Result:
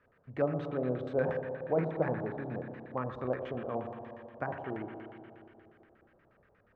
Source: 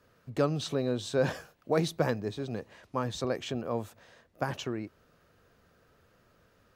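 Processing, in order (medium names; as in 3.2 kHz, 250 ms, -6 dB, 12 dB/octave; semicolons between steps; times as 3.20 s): spring tank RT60 2.7 s, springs 31/55 ms, chirp 50 ms, DRR 3.5 dB; LFO low-pass square 8.4 Hz 730–2000 Hz; dynamic bell 5.2 kHz, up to -8 dB, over -53 dBFS, Q 0.72; trim -6 dB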